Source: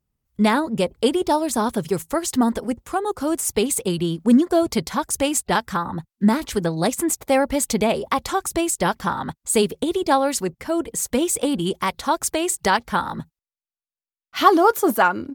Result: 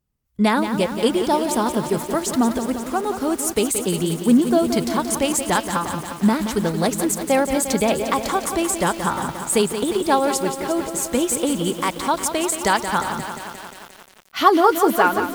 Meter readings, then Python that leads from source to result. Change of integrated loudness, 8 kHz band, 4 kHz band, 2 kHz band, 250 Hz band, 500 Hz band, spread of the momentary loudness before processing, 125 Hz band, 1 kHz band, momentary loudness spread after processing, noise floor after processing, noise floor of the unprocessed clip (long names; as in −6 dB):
+1.0 dB, +1.0 dB, +1.0 dB, +1.0 dB, +1.0 dB, +1.0 dB, 8 LU, +1.0 dB, +1.0 dB, 7 LU, −45 dBFS, below −85 dBFS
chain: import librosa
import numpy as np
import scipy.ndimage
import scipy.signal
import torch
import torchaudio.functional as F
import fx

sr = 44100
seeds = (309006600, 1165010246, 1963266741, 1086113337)

y = fx.echo_crushed(x, sr, ms=176, feedback_pct=80, bits=6, wet_db=-8.5)